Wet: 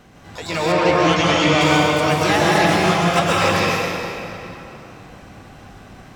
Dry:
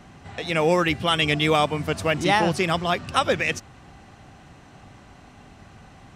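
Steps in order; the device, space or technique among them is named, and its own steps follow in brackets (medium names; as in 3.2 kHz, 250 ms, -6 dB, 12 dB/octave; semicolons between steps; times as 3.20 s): shimmer-style reverb (harmony voices +12 st -6 dB; reverberation RT60 3.1 s, pre-delay 118 ms, DRR -6 dB); 0.72–1.61 s: distance through air 69 m; trim -2 dB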